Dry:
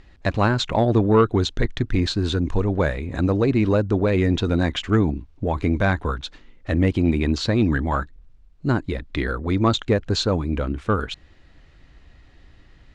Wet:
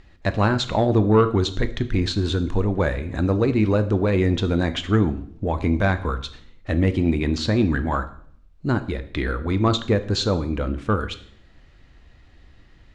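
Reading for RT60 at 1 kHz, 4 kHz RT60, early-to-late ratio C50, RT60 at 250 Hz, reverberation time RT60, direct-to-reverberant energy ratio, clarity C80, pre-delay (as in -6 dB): 0.55 s, 0.55 s, 14.5 dB, 0.80 s, 0.60 s, 10.0 dB, 18.0 dB, 7 ms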